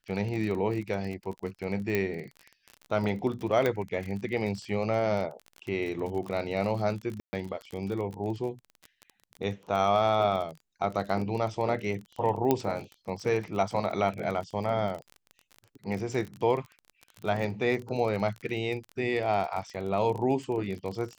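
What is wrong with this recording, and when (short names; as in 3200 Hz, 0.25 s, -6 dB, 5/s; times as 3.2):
crackle 33/s -34 dBFS
1.95 pop -14 dBFS
3.66 pop -14 dBFS
7.2–7.33 gap 0.13 s
12.51 pop -11 dBFS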